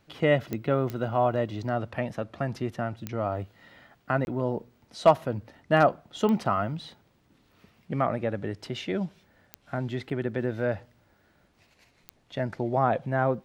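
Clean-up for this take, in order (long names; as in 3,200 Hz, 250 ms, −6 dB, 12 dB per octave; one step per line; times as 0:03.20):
clipped peaks rebuilt −8 dBFS
click removal
repair the gap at 0:04.25, 21 ms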